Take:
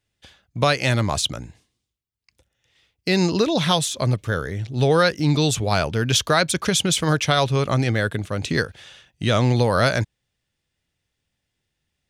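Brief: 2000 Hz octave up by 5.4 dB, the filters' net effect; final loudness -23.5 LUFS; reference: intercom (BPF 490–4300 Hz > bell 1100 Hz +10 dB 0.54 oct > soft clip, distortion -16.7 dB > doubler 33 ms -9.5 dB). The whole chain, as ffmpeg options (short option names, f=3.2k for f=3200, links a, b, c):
-filter_complex "[0:a]highpass=490,lowpass=4.3k,equalizer=f=1.1k:t=o:w=0.54:g=10,equalizer=f=2k:t=o:g=5,asoftclip=threshold=-7dB,asplit=2[a][b];[b]adelay=33,volume=-9.5dB[c];[a][c]amix=inputs=2:normalize=0,volume=-3dB"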